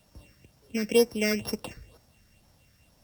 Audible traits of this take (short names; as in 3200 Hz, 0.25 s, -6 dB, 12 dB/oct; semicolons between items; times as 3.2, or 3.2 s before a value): a buzz of ramps at a fixed pitch in blocks of 16 samples; phasing stages 6, 2.1 Hz, lowest notch 800–3100 Hz; a quantiser's noise floor 12-bit, dither none; Opus